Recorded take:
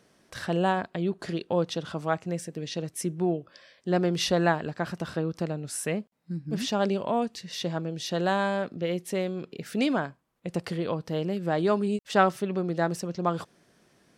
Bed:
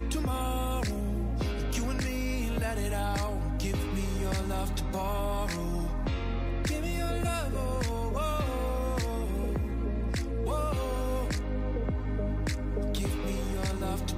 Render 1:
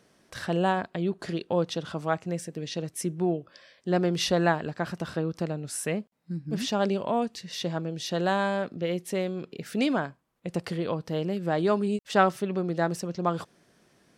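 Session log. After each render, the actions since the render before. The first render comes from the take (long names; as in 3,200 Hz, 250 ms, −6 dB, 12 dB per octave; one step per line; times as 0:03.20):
no processing that can be heard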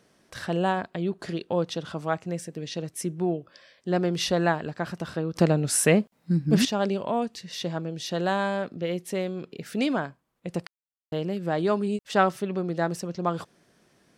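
0:05.36–0:06.65: clip gain +10 dB
0:10.67–0:11.12: silence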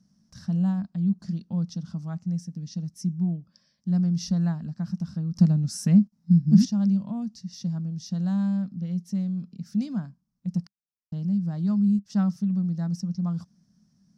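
drawn EQ curve 130 Hz 0 dB, 200 Hz +9 dB, 390 Hz −26 dB, 700 Hz −18 dB, 1,200 Hz −17 dB, 2,400 Hz −23 dB, 3,500 Hz −19 dB, 5,500 Hz −1 dB, 8,400 Hz −16 dB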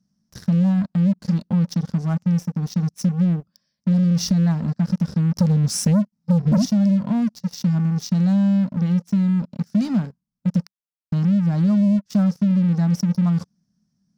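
leveller curve on the samples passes 3
downward compressor, threshold −15 dBFS, peak gain reduction 7 dB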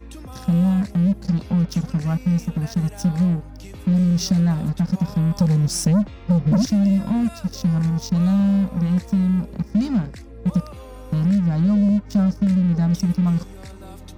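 mix in bed −7.5 dB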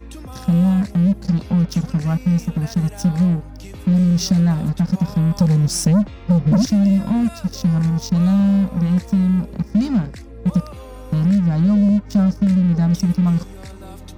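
level +2.5 dB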